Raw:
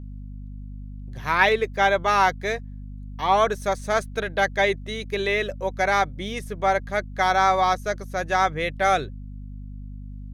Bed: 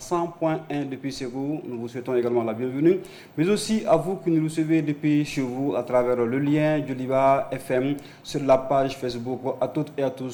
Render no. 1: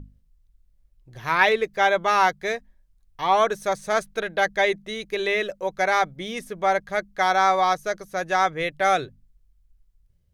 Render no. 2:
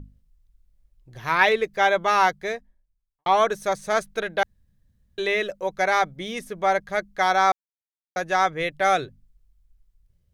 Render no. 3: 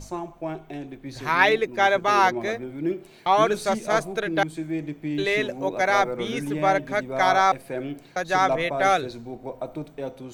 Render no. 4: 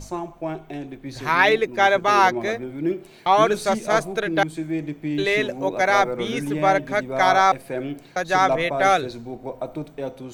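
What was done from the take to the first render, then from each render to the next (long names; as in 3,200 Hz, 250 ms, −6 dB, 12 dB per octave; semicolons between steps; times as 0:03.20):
mains-hum notches 50/100/150/200/250 Hz
0:02.24–0:03.26: fade out and dull; 0:04.43–0:05.18: fill with room tone; 0:07.52–0:08.16: silence
mix in bed −7.5 dB
level +2.5 dB; brickwall limiter −3 dBFS, peak gain reduction 2.5 dB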